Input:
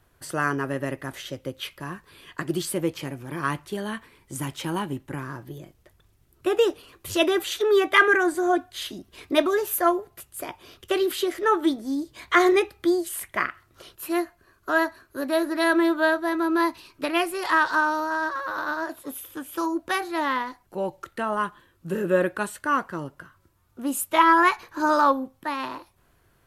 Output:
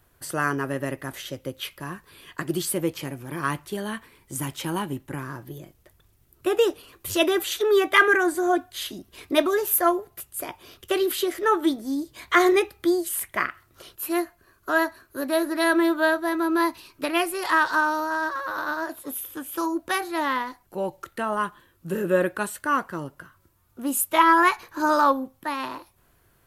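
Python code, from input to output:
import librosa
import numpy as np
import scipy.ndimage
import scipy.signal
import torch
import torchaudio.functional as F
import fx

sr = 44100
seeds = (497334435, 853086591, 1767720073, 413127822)

y = fx.high_shelf(x, sr, hz=12000.0, db=11.5)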